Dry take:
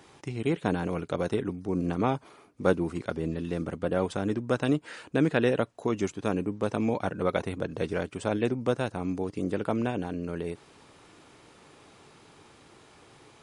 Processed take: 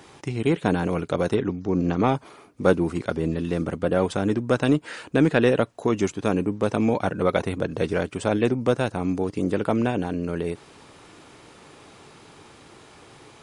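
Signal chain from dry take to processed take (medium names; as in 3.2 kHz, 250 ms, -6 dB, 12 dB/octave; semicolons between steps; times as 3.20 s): 1.35–2.04 s: steep low-pass 7.1 kHz 72 dB/octave; in parallel at -8.5 dB: saturation -20.5 dBFS, distortion -12 dB; on the sum: trim +3.5 dB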